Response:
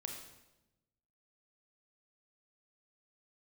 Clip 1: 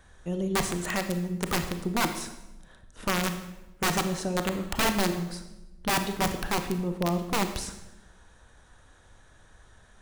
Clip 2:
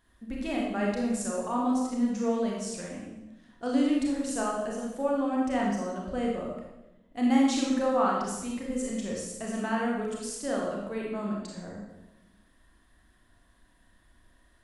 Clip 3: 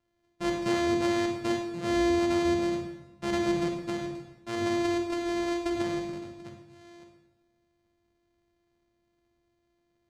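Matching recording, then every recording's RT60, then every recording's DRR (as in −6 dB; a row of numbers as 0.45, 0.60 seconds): 3; 1.0, 1.0, 1.0 seconds; 7.0, −3.0, 2.0 decibels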